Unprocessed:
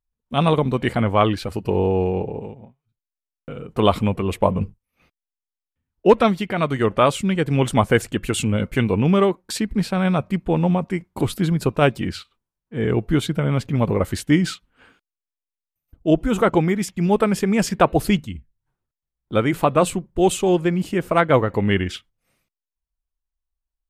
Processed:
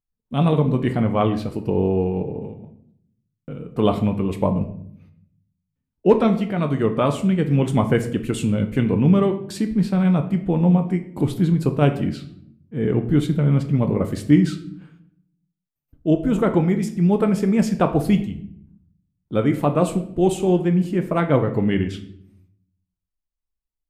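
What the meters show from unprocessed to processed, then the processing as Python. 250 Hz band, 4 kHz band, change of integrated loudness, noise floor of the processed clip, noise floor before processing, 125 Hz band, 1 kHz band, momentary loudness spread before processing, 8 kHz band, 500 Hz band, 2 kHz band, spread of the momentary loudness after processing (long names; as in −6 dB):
+2.0 dB, −7.0 dB, 0.0 dB, −83 dBFS, below −85 dBFS, +2.0 dB, −5.0 dB, 10 LU, −7.5 dB, −2.0 dB, −6.5 dB, 9 LU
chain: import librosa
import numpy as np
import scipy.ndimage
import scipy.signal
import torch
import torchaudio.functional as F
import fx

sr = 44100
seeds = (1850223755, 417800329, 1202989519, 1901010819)

y = fx.peak_eq(x, sr, hz=200.0, db=10.0, octaves=2.5)
y = fx.room_shoebox(y, sr, seeds[0], volume_m3=120.0, walls='mixed', distance_m=0.4)
y = y * librosa.db_to_amplitude(-8.0)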